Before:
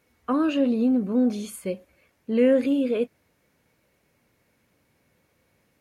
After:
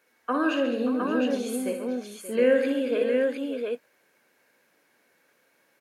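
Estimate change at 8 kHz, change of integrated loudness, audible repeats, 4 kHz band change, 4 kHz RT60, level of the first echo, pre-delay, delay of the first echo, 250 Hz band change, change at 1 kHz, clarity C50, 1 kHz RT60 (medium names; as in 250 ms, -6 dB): +2.5 dB, -2.5 dB, 6, +3.0 dB, no reverb, -6.5 dB, no reverb, 59 ms, -4.5 dB, +3.0 dB, no reverb, no reverb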